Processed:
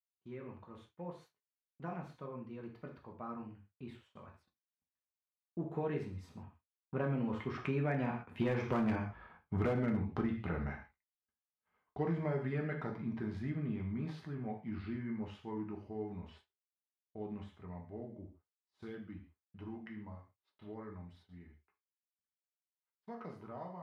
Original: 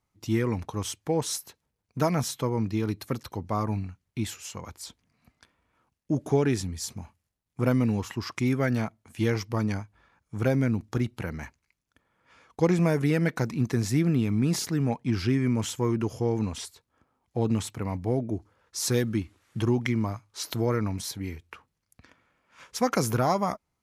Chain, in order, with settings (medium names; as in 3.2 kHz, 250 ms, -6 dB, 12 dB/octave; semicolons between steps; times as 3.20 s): Doppler pass-by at 9.06 s, 30 m/s, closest 14 m; distance through air 480 m; gated-style reverb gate 170 ms falling, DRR 0.5 dB; in parallel at -4 dB: wavefolder -25 dBFS; on the sum: expander -58 dBFS; bass shelf 360 Hz -4.5 dB; compression 6:1, threshold -34 dBFS, peak gain reduction 10 dB; trim +3.5 dB